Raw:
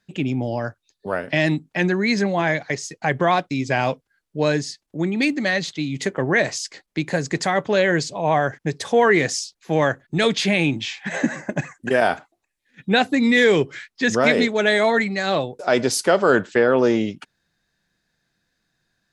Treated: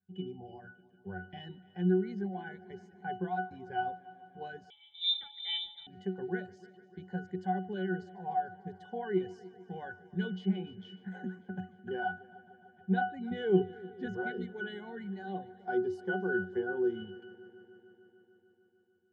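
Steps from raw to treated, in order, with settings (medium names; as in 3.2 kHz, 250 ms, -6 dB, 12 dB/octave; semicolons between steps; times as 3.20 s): reverb removal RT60 0.98 s; 13.31–14.06 s: peaking EQ 220 Hz +9 dB 2.6 oct; pitch-class resonator F#, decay 0.29 s; multi-head delay 149 ms, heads first and second, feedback 70%, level -23 dB; 4.70–5.87 s: frequency inversion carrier 3.8 kHz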